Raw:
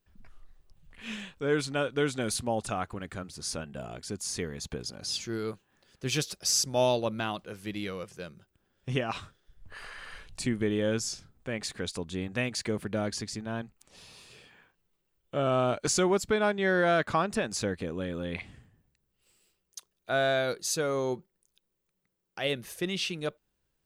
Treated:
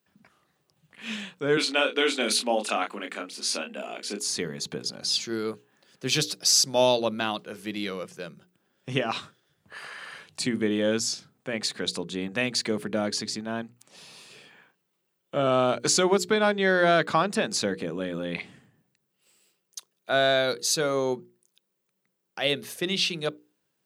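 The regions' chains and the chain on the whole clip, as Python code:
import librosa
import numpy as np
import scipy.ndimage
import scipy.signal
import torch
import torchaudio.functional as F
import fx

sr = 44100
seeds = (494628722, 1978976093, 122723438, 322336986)

y = fx.chain(x, sr, fx.ellip_highpass(hz=220.0, order=4, stop_db=50),
    fx.peak_eq(hz=2600.0, db=9.0, octaves=0.8),
    fx.doubler(ms=29.0, db=-5.5), at=(1.57, 4.2))
y = scipy.signal.sosfilt(scipy.signal.butter(4, 140.0, 'highpass', fs=sr, output='sos'), y)
y = fx.hum_notches(y, sr, base_hz=60, count=8)
y = fx.dynamic_eq(y, sr, hz=4100.0, q=2.2, threshold_db=-49.0, ratio=4.0, max_db=6)
y = y * librosa.db_to_amplitude(4.0)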